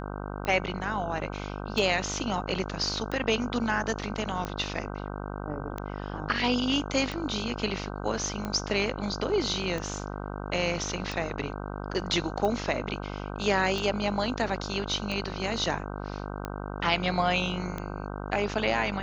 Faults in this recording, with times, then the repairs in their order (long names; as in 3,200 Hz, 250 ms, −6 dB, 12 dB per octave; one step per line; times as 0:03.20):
mains buzz 50 Hz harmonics 31 −36 dBFS
scratch tick 45 rpm −19 dBFS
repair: click removal
hum removal 50 Hz, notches 31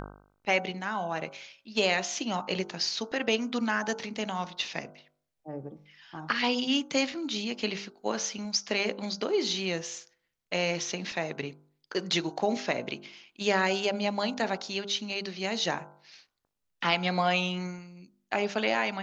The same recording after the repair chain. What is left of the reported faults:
none of them is left